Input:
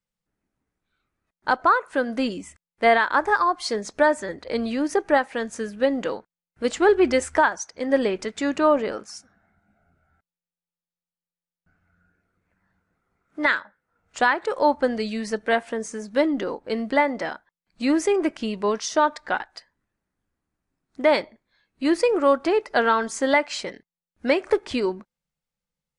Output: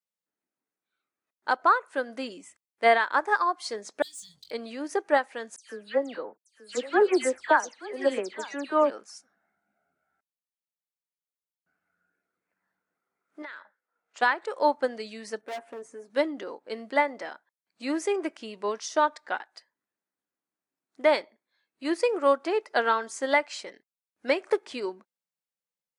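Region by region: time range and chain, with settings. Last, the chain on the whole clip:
0:04.02–0:04.51: Chebyshev band-stop filter 150–3,400 Hz, order 4 + leveller curve on the samples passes 2 + double-tracking delay 22 ms −8.5 dB
0:05.56–0:08.90: all-pass dispersion lows, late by 131 ms, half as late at 3,000 Hz + single-tap delay 880 ms −13 dB
0:13.42–0:14.22: high-pass filter 320 Hz 6 dB per octave + downward compressor 12 to 1, threshold −27 dBFS + high-frequency loss of the air 67 metres
0:15.41–0:16.10: parametric band 5,200 Hz −15 dB 2.7 octaves + comb filter 7.3 ms, depth 57% + hard clipping −24.5 dBFS
whole clip: high-pass filter 310 Hz 12 dB per octave; high-shelf EQ 7,600 Hz +5 dB; expander for the loud parts 1.5 to 1, over −27 dBFS; level −2 dB

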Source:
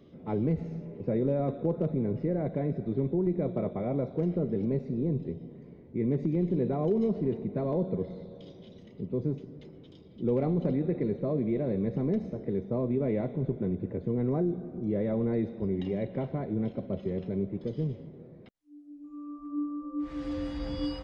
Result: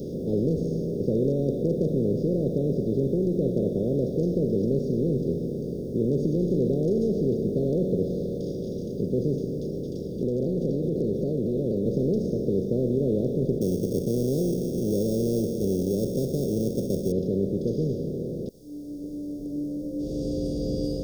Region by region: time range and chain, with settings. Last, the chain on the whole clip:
0:09.71–0:11.86: downward compressor, threshold −30 dBFS + pitch modulation by a square or saw wave saw down 4 Hz, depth 160 cents
0:13.61–0:17.12: sample-rate reduction 3,000 Hz + saturating transformer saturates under 280 Hz
whole clip: compressor on every frequency bin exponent 0.4; elliptic band-stop filter 510–4,500 Hz, stop band 50 dB

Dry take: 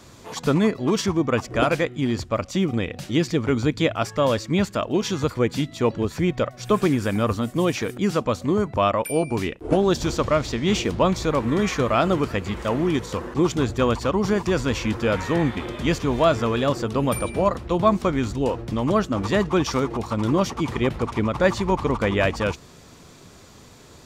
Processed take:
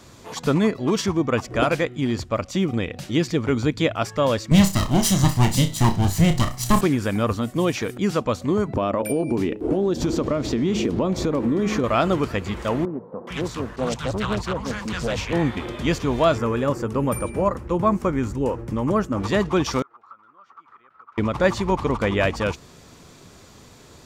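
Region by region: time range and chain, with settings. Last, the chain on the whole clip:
0:04.51–0:06.81: lower of the sound and its delayed copy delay 1 ms + bass and treble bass +8 dB, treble +14 dB + flutter between parallel walls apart 5.3 metres, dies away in 0.24 s
0:08.68–0:11.84: parametric band 290 Hz +12 dB 2.1 octaves + hum removal 106.3 Hz, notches 8 + downward compressor, threshold −18 dBFS
0:12.85–0:15.33: parametric band 330 Hz −8.5 dB 0.75 octaves + three-band delay without the direct sound mids, highs, lows 420/450 ms, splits 160/840 Hz + highs frequency-modulated by the lows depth 0.39 ms
0:16.38–0:19.20: parametric band 3,800 Hz −12.5 dB 0.95 octaves + notch filter 690 Hz, Q 8.1
0:19.82–0:21.18: downward compressor 4 to 1, threshold −29 dBFS + resonant band-pass 1,300 Hz, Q 10
whole clip: no processing

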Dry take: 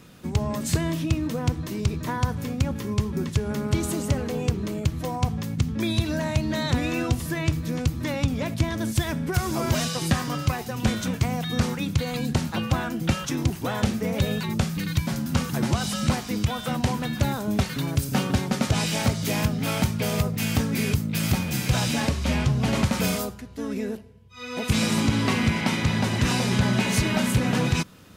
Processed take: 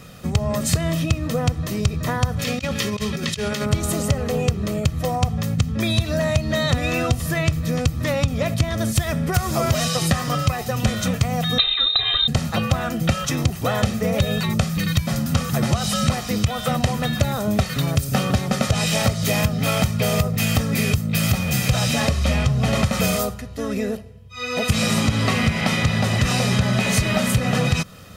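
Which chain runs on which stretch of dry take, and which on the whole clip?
0:02.39–0:03.66: meter weighting curve D + compressor whose output falls as the input rises −30 dBFS, ratio −0.5
0:11.58–0:12.28: voice inversion scrambler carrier 3,900 Hz + comb filter 2.5 ms, depth 90%
whole clip: comb filter 1.6 ms, depth 54%; downward compressor 3 to 1, threshold −23 dBFS; level +6.5 dB

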